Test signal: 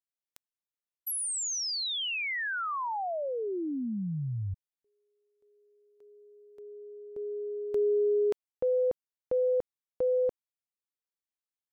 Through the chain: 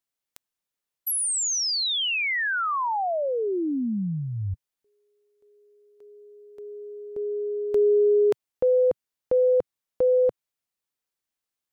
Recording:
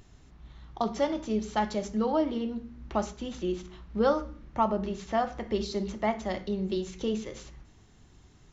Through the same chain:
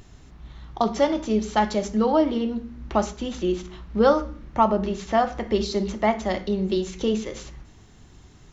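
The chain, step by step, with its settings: dynamic bell 130 Hz, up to -5 dB, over -51 dBFS, Q 2.6; trim +7 dB

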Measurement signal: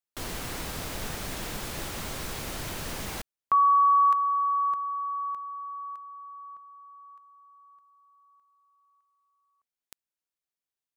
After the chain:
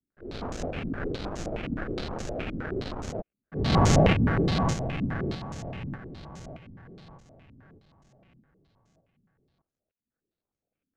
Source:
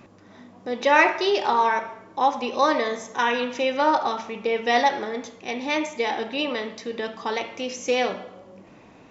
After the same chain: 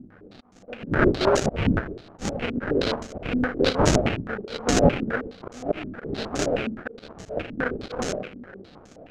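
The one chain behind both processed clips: slow attack 270 ms; sample-rate reducer 1 kHz, jitter 20%; step-sequenced low-pass 9.6 Hz 250–6600 Hz

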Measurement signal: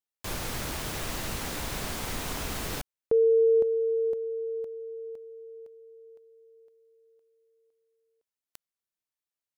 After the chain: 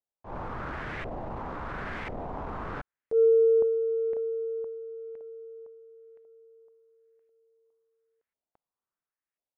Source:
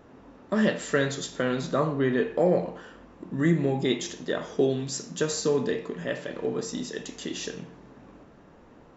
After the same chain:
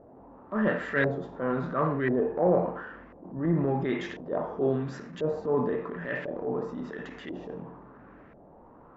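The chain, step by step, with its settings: LFO low-pass saw up 0.96 Hz 630–2100 Hz; transient shaper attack -9 dB, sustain +4 dB; trim -2 dB

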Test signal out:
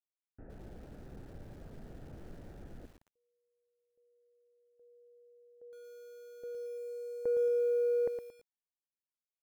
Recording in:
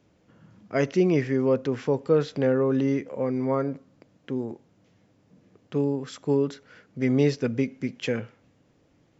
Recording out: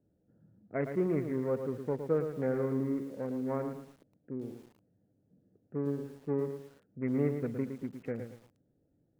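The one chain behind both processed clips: local Wiener filter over 41 samples; elliptic low-pass 2.1 kHz, stop band 60 dB; bit-crushed delay 113 ms, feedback 35%, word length 8-bit, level -7.5 dB; trim -8 dB

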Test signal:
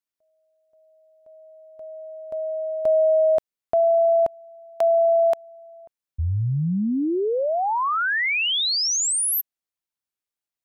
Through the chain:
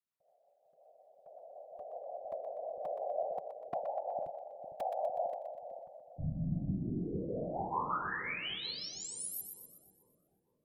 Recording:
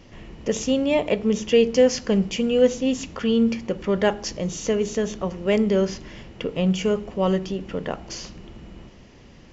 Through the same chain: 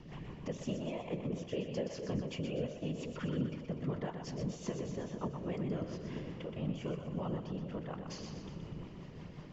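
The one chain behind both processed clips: compression 2.5:1, threshold -40 dBFS; whisper effect; rotary cabinet horn 5.5 Hz; fifteen-band graphic EQ 160 Hz +9 dB, 1 kHz +8 dB, 6.3 kHz -5 dB; two-band feedback delay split 540 Hz, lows 454 ms, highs 123 ms, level -6.5 dB; trim -4.5 dB

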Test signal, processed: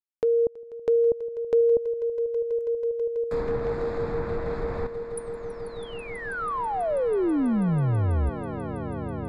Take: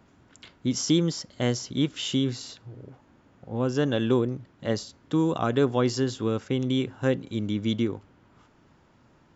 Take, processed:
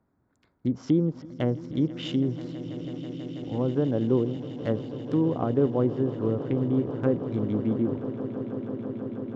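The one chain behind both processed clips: local Wiener filter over 15 samples; low-pass that closes with the level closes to 730 Hz, closed at -22 dBFS; gate -50 dBFS, range -13 dB; echo with a slow build-up 163 ms, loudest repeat 8, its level -17.5 dB

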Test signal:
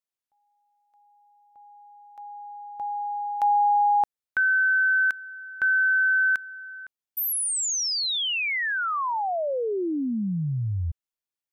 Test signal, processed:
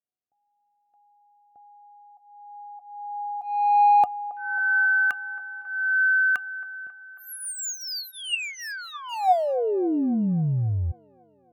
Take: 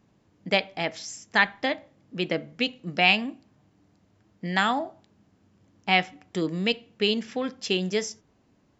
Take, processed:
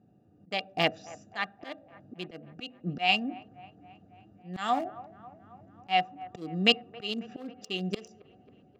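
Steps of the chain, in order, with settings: local Wiener filter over 41 samples; high-pass 89 Hz 12 dB/octave; treble shelf 5.8 kHz +11.5 dB; in parallel at +0.5 dB: compression, threshold -34 dBFS; on the sum: slow attack 414 ms; level rider gain up to 5 dB; small resonant body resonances 740/1200/2800 Hz, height 14 dB, ringing for 70 ms; on a send: feedback echo behind a band-pass 272 ms, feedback 63%, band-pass 830 Hz, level -17.5 dB; on the sum: trim -4 dB

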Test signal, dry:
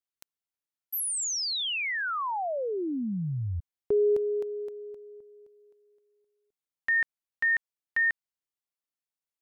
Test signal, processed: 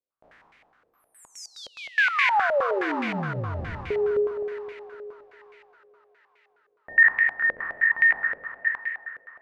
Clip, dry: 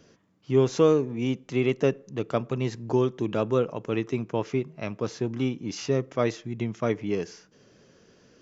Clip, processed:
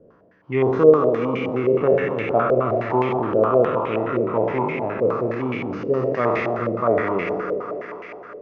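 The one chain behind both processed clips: spectral sustain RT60 2.18 s; de-hum 68.62 Hz, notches 8; on a send: thinning echo 204 ms, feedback 80%, high-pass 230 Hz, level -9 dB; on the sum: step-sequenced low-pass 9.6 Hz 530–2200 Hz; trim -1 dB

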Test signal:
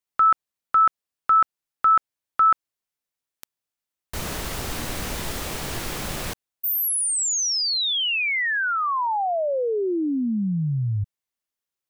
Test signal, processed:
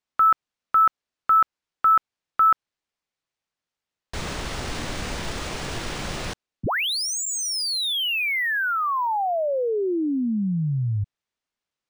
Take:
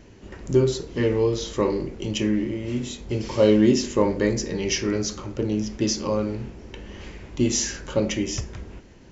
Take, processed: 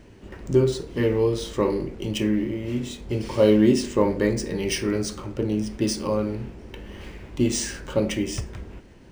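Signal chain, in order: decimation joined by straight lines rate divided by 3×

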